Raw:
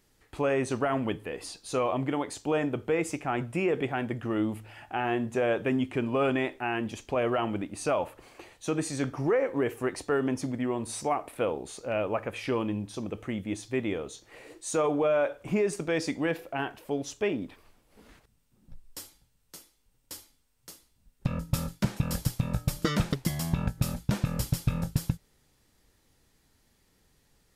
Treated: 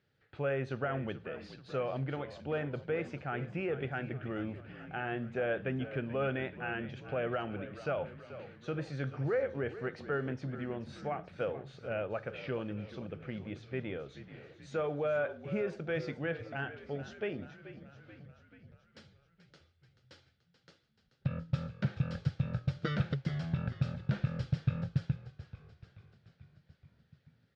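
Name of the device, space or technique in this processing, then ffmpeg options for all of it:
frequency-shifting delay pedal into a guitar cabinet: -filter_complex "[0:a]asplit=8[link_01][link_02][link_03][link_04][link_05][link_06][link_07][link_08];[link_02]adelay=433,afreqshift=-47,volume=-13.5dB[link_09];[link_03]adelay=866,afreqshift=-94,volume=-17.7dB[link_10];[link_04]adelay=1299,afreqshift=-141,volume=-21.8dB[link_11];[link_05]adelay=1732,afreqshift=-188,volume=-26dB[link_12];[link_06]adelay=2165,afreqshift=-235,volume=-30.1dB[link_13];[link_07]adelay=2598,afreqshift=-282,volume=-34.3dB[link_14];[link_08]adelay=3031,afreqshift=-329,volume=-38.4dB[link_15];[link_01][link_09][link_10][link_11][link_12][link_13][link_14][link_15]amix=inputs=8:normalize=0,highpass=88,equalizer=frequency=92:width_type=q:width=4:gain=7,equalizer=frequency=140:width_type=q:width=4:gain=9,equalizer=frequency=290:width_type=q:width=4:gain=-5,equalizer=frequency=530:width_type=q:width=4:gain=4,equalizer=frequency=1000:width_type=q:width=4:gain=-9,equalizer=frequency=1500:width_type=q:width=4:gain=8,lowpass=frequency=4200:width=0.5412,lowpass=frequency=4200:width=1.3066,volume=-8.5dB"

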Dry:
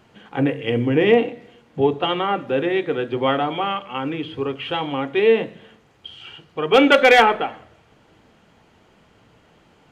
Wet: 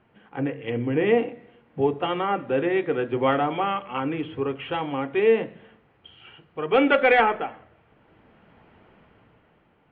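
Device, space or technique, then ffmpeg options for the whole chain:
action camera in a waterproof case: -af "lowpass=frequency=2700:width=0.5412,lowpass=frequency=2700:width=1.3066,dynaudnorm=framelen=160:gausssize=11:maxgain=9dB,volume=-7.5dB" -ar 44100 -c:a aac -b:a 48k

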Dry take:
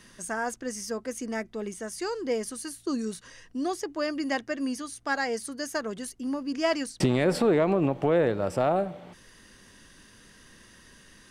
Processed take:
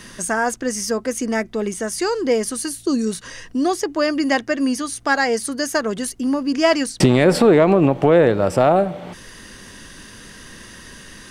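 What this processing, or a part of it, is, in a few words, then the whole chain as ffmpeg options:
parallel compression: -filter_complex "[0:a]asplit=2[link_01][link_02];[link_02]acompressor=threshold=-39dB:ratio=6,volume=-3dB[link_03];[link_01][link_03]amix=inputs=2:normalize=0,asettb=1/sr,asplit=3[link_04][link_05][link_06];[link_04]atrim=end=2.664[link_07];[link_05]atrim=start=2.66:end=3.07,asetpts=PTS-STARTPTS,afade=type=in:duration=0.004:curve=qsin,afade=type=out:start_time=0.406:duration=0.004:curve=qsin,equalizer=frequency=1300:width=0.82:gain=-5[link_08];[link_06]atrim=start=3.066[link_09];[link_07][link_08]acrossfade=duration=0.004:curve1=hsin:curve2=qsin[link_10];[link_10][link_09]acrossfade=duration=0.004:curve1=qsin:curve2=hsin,volume=9dB"

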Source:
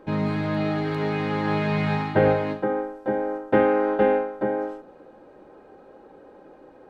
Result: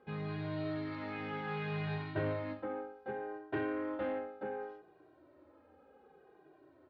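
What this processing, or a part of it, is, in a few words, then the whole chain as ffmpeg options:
barber-pole flanger into a guitar amplifier: -filter_complex "[0:a]asplit=2[link_01][link_02];[link_02]adelay=2,afreqshift=-0.66[link_03];[link_01][link_03]amix=inputs=2:normalize=1,asoftclip=type=tanh:threshold=-17.5dB,highpass=78,equalizer=frequency=80:width_type=q:width=4:gain=10,equalizer=frequency=200:width_type=q:width=4:gain=-10,equalizer=frequency=510:width_type=q:width=4:gain=-5,equalizer=frequency=870:width_type=q:width=4:gain=-4,lowpass=frequency=4500:width=0.5412,lowpass=frequency=4500:width=1.3066,volume=-8.5dB"

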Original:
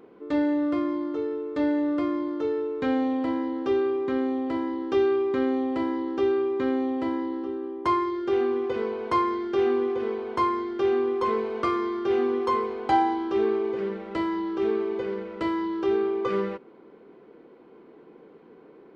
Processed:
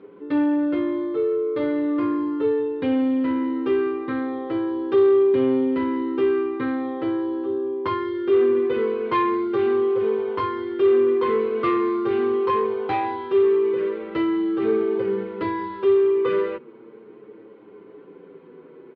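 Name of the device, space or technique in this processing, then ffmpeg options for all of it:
barber-pole flanger into a guitar amplifier: -filter_complex "[0:a]asplit=2[link_01][link_02];[link_02]adelay=7.4,afreqshift=-0.39[link_03];[link_01][link_03]amix=inputs=2:normalize=1,asoftclip=type=tanh:threshold=-22dB,highpass=83,equalizer=frequency=110:width_type=q:width=4:gain=7,equalizer=frequency=420:width_type=q:width=4:gain=5,equalizer=frequency=710:width_type=q:width=4:gain=-8,lowpass=frequency=3700:width=0.5412,lowpass=frequency=3700:width=1.3066,volume=7dB"

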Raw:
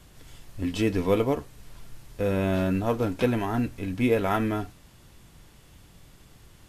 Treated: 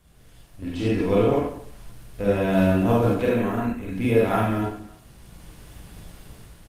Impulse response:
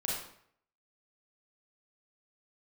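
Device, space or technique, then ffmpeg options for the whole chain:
speakerphone in a meeting room: -filter_complex "[0:a]asettb=1/sr,asplit=3[link_01][link_02][link_03];[link_01]atrim=end=0.604[link_04];[link_02]atrim=start=0.6:end=2.48,asetpts=PTS-STARTPTS,afade=type=in:duration=0.004:curve=qsin,afade=type=out:start_time=1.876:duration=0.004:curve=qsin,acrossover=split=7400[link_05][link_06];[link_06]acompressor=threshold=-57dB:ratio=4:attack=1:release=60[link_07];[link_05][link_07]amix=inputs=2:normalize=0[link_08];[link_03]atrim=start=2.476[link_09];[link_04][link_08]acrossfade=duration=0.004:curve1=hsin:curve2=qsin[link_10];[link_10][link_09]acrossfade=duration=0.004:curve1=qsin:curve2=hsin,asettb=1/sr,asplit=3[link_11][link_12][link_13];[link_11]atrim=end=3.164[link_14];[link_12]atrim=start=3.16:end=3.89,asetpts=PTS-STARTPTS,afade=type=in:duration=0.004:curve=qsin,afade=type=out:start_time=0.726:duration=0.004:curve=qsin,equalizer=frequency=125:width_type=o:width=0.33:gain=-10,equalizer=frequency=315:width_type=o:width=0.33:gain=-5,equalizer=frequency=800:width_type=o:width=0.33:gain=-8,equalizer=frequency=3150:width_type=o:width=0.33:gain=-6,equalizer=frequency=5000:width_type=o:width=0.33:gain=-11,equalizer=frequency=10000:width_type=o:width=0.33:gain=-7[link_15];[link_13]atrim=start=3.886[link_16];[link_14][link_15]acrossfade=duration=0.004:curve1=hsin:curve2=qsin[link_17];[link_17][link_16]acrossfade=duration=0.004:curve1=qsin:curve2=hsin[link_18];[1:a]atrim=start_sample=2205[link_19];[link_18][link_19]afir=irnorm=-1:irlink=0,asplit=2[link_20][link_21];[link_21]adelay=280,highpass=300,lowpass=3400,asoftclip=type=hard:threshold=-16dB,volume=-25dB[link_22];[link_20][link_22]amix=inputs=2:normalize=0,dynaudnorm=framelen=320:gausssize=5:maxgain=12.5dB,volume=-6.5dB" -ar 48000 -c:a libopus -b:a 32k

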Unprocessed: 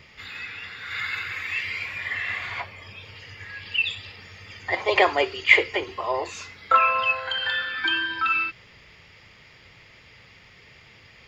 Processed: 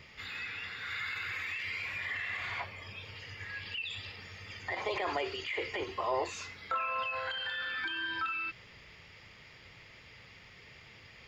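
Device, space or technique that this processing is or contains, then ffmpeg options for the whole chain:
de-esser from a sidechain: -filter_complex "[0:a]asplit=2[link_01][link_02];[link_02]highpass=frequency=5800:poles=1,apad=whole_len=497368[link_03];[link_01][link_03]sidechaincompress=threshold=-37dB:ratio=10:attack=0.56:release=38,volume=-3.5dB"

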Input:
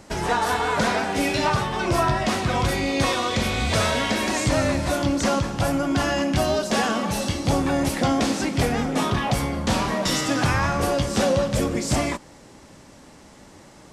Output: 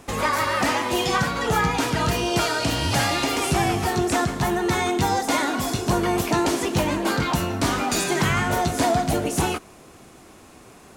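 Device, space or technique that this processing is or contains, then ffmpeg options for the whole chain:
nightcore: -af "asetrate=56007,aresample=44100"

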